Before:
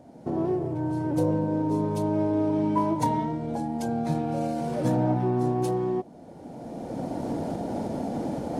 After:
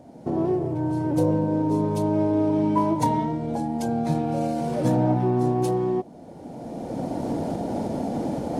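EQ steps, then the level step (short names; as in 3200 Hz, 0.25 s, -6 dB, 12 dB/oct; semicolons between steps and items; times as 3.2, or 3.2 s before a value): bell 1500 Hz -2 dB; +3.0 dB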